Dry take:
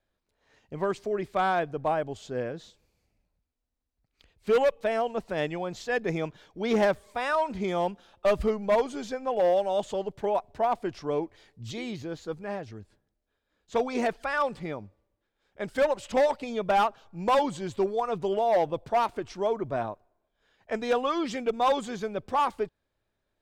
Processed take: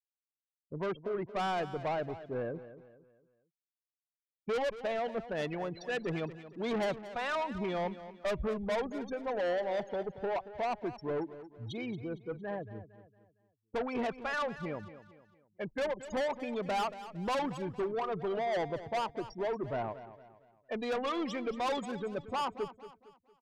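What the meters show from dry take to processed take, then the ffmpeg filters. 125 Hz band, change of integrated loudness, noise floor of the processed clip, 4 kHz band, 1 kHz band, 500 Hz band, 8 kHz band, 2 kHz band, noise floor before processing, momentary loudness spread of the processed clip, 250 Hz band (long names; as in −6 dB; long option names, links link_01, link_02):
−3.5 dB, −7.5 dB, below −85 dBFS, −4.5 dB, −8.0 dB, −7.5 dB, can't be measured, −5.5 dB, −81 dBFS, 8 LU, −5.0 dB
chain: -filter_complex "[0:a]afftfilt=real='re*gte(hypot(re,im),0.0224)':imag='im*gte(hypot(re,im),0.0224)':win_size=1024:overlap=0.75,highshelf=frequency=5800:gain=8.5,asoftclip=type=tanh:threshold=-27.5dB,asplit=2[link_01][link_02];[link_02]aecho=0:1:229|458|687|916:0.2|0.0778|0.0303|0.0118[link_03];[link_01][link_03]amix=inputs=2:normalize=0,volume=-2dB"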